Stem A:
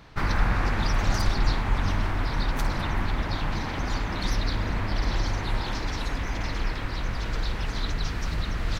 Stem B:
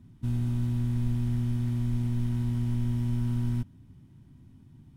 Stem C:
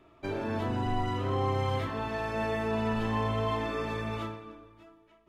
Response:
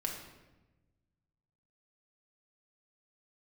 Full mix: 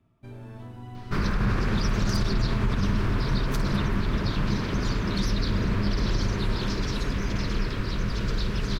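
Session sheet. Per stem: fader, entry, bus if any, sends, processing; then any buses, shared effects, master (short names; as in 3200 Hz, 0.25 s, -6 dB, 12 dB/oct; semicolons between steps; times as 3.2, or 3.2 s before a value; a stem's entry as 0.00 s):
+0.5 dB, 0.95 s, no send, limiter -17.5 dBFS, peak gain reduction 7.5 dB; thirty-one-band EQ 125 Hz +9 dB, 200 Hz +10 dB, 400 Hz +8 dB, 800 Hz -11 dB, 2000 Hz -4 dB, 5000 Hz +3 dB
-14.5 dB, 0.00 s, no send, dry
-15.0 dB, 0.00 s, no send, dry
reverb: off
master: dry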